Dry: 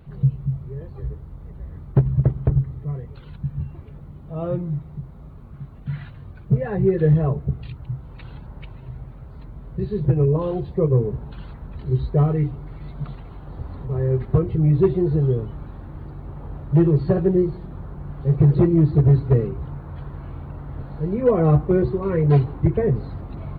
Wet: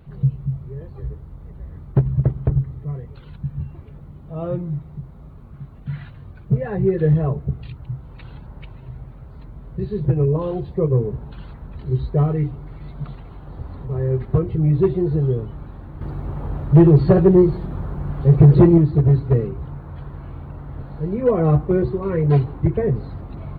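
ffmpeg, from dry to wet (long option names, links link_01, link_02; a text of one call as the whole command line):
ffmpeg -i in.wav -filter_complex "[0:a]asettb=1/sr,asplit=3[link_01][link_02][link_03];[link_01]atrim=end=16.014[link_04];[link_02]atrim=start=16.01:end=18.78,asetpts=PTS-STARTPTS,afade=type=in:duration=0.004:curve=qsin,afade=type=out:start_time=2.766:duration=0.004:curve=qsin,acontrast=84[link_05];[link_03]atrim=start=18.776[link_06];[link_04][link_05]acrossfade=duration=0.004:curve1=hsin:curve2=qsin[link_07];[link_07][link_06]acrossfade=duration=0.004:curve1=qsin:curve2=hsin" out.wav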